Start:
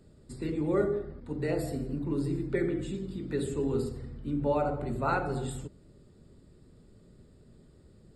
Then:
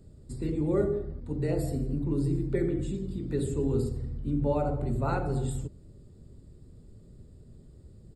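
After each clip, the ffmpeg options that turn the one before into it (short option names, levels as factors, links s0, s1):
-af "firequalizer=gain_entry='entry(100,0);entry(180,-6);entry(1400,-14);entry(7000,-7)':delay=0.05:min_phase=1,volume=2.51"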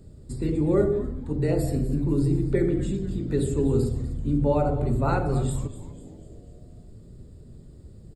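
-filter_complex "[0:a]asplit=6[s0][s1][s2][s3][s4][s5];[s1]adelay=246,afreqshift=-150,volume=0.188[s6];[s2]adelay=492,afreqshift=-300,volume=0.0923[s7];[s3]adelay=738,afreqshift=-450,volume=0.0452[s8];[s4]adelay=984,afreqshift=-600,volume=0.0221[s9];[s5]adelay=1230,afreqshift=-750,volume=0.0108[s10];[s0][s6][s7][s8][s9][s10]amix=inputs=6:normalize=0,volume=1.78"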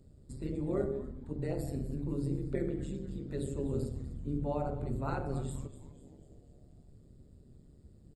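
-af "tremolo=f=140:d=0.667,volume=0.376"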